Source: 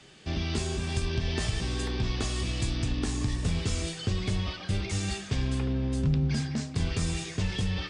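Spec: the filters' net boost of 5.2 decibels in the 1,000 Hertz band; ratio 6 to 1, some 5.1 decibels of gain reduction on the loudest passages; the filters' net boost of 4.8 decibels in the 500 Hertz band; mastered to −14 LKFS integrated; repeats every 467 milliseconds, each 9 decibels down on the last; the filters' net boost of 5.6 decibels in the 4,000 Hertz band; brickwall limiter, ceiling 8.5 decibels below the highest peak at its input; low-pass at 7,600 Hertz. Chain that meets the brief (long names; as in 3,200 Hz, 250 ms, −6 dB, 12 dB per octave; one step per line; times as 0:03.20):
low-pass filter 7,600 Hz
parametric band 500 Hz +5.5 dB
parametric band 1,000 Hz +4.5 dB
parametric band 4,000 Hz +7 dB
downward compressor 6 to 1, threshold −28 dBFS
brickwall limiter −26 dBFS
repeating echo 467 ms, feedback 35%, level −9 dB
level +20.5 dB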